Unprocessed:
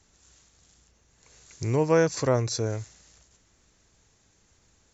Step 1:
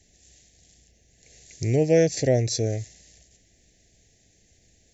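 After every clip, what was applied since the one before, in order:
Chebyshev band-stop filter 720–1,800 Hz, order 3
level +3.5 dB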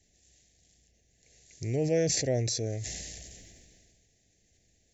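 level that may fall only so fast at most 26 dB per second
level −8.5 dB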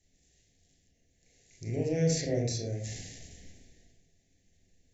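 convolution reverb RT60 0.40 s, pre-delay 26 ms, DRR −2 dB
level −6.5 dB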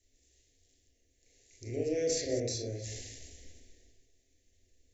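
delay that plays each chunk backwards 150 ms, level −12.5 dB
phaser with its sweep stopped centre 410 Hz, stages 4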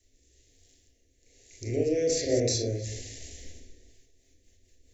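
rotating-speaker cabinet horn 1.1 Hz, later 5 Hz, at 0:03.55
level +8.5 dB

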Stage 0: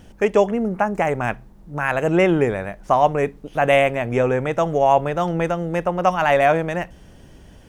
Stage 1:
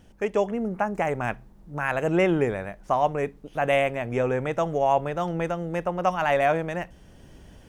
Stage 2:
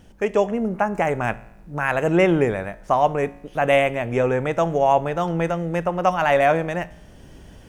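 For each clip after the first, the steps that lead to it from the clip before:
automatic gain control gain up to 6 dB; level −8.5 dB
tuned comb filter 56 Hz, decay 0.84 s, harmonics all, mix 40%; level +8 dB

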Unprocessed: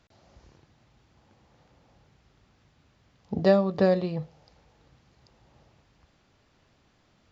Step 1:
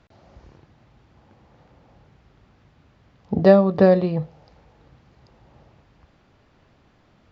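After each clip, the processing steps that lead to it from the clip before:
low-pass filter 2,100 Hz 6 dB per octave
level +7.5 dB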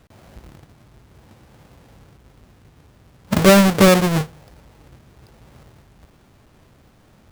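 each half-wave held at its own peak
in parallel at +1.5 dB: brickwall limiter −10 dBFS, peak gain reduction 8.5 dB
on the sum: level −6 dB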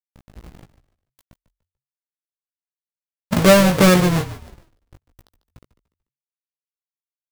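bit reduction 7 bits
double-tracking delay 17 ms −6 dB
echo with shifted repeats 146 ms, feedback 32%, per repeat −46 Hz, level −14 dB
level −1.5 dB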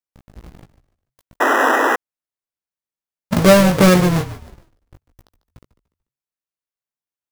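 sound drawn into the spectrogram noise, 0:01.40–0:01.96, 230–2,000 Hz −16 dBFS
in parallel at −9 dB: decimation without filtering 10×
on the sum: level −1 dB

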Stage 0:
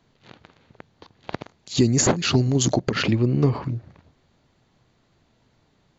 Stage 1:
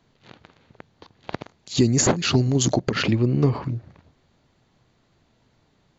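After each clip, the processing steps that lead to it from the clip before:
no processing that can be heard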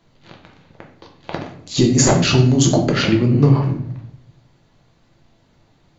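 rectangular room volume 96 cubic metres, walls mixed, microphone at 0.77 metres
level +2.5 dB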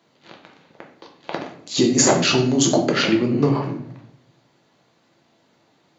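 high-pass filter 240 Hz 12 dB per octave

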